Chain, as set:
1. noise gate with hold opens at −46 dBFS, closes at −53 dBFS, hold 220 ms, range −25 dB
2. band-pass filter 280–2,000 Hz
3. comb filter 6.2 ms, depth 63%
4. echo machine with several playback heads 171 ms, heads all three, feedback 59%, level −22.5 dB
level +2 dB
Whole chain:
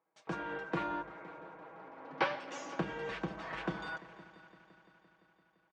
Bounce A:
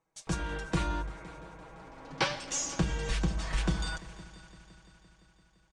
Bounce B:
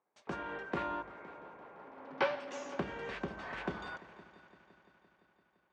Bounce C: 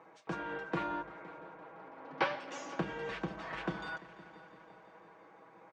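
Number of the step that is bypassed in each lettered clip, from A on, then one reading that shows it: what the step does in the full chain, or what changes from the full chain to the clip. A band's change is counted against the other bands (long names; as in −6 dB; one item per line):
2, 8 kHz band +18.0 dB
3, 500 Hz band +3.0 dB
1, change in momentary loudness spread +4 LU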